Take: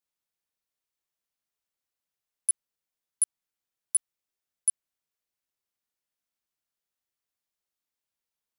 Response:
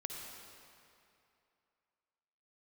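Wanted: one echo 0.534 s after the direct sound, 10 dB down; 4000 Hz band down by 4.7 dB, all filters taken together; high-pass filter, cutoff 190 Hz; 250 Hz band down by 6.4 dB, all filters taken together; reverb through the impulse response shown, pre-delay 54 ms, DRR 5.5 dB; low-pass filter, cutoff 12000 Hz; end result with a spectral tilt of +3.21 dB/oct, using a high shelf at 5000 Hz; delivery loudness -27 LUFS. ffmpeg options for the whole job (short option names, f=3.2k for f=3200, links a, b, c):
-filter_complex "[0:a]highpass=190,lowpass=12k,equalizer=f=250:t=o:g=-7,equalizer=f=4k:t=o:g=-8,highshelf=f=5k:g=3,aecho=1:1:534:0.316,asplit=2[a][b];[1:a]atrim=start_sample=2205,adelay=54[c];[b][c]afir=irnorm=-1:irlink=0,volume=-5dB[d];[a][d]amix=inputs=2:normalize=0,volume=2.5dB"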